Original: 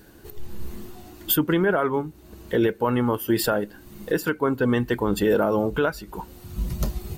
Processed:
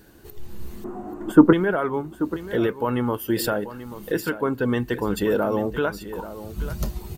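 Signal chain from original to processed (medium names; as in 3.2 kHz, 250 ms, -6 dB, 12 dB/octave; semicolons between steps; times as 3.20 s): 0.84–1.53 s: FFT filter 130 Hz 0 dB, 200 Hz +13 dB, 1.2 kHz +12 dB, 4.2 kHz -22 dB, 7.8 kHz -9 dB, 14 kHz -27 dB; on a send: delay 835 ms -13.5 dB; on the sum: trim -1.5 dB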